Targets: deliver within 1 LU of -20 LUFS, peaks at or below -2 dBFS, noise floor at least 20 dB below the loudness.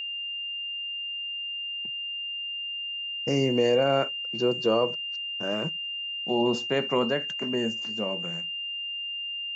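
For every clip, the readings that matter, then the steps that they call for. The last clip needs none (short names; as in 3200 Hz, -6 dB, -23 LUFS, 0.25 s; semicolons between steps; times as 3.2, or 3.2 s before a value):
steady tone 2800 Hz; tone level -31 dBFS; loudness -28.0 LUFS; peak -12.5 dBFS; loudness target -20.0 LUFS
-> notch 2800 Hz, Q 30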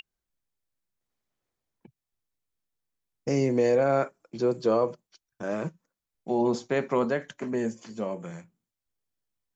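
steady tone none; loudness -28.0 LUFS; peak -13.0 dBFS; loudness target -20.0 LUFS
-> gain +8 dB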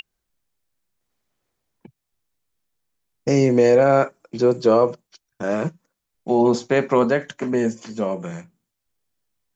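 loudness -20.0 LUFS; peak -5.0 dBFS; noise floor -80 dBFS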